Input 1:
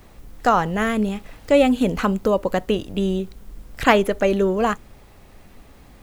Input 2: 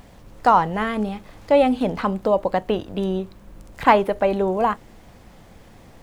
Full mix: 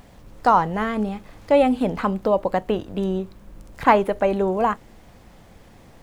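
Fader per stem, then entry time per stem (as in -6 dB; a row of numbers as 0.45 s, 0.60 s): -16.5 dB, -1.5 dB; 0.00 s, 0.00 s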